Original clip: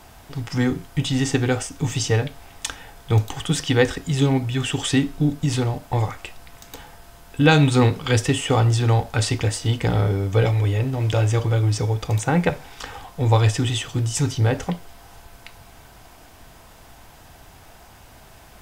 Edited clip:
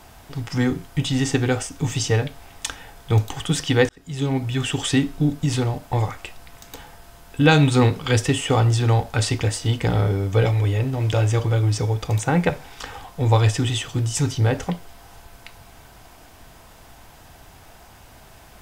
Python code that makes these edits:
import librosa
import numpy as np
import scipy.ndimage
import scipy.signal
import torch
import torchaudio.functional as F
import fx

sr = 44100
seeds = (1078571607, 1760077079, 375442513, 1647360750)

y = fx.edit(x, sr, fx.fade_in_span(start_s=3.89, length_s=0.62), tone=tone)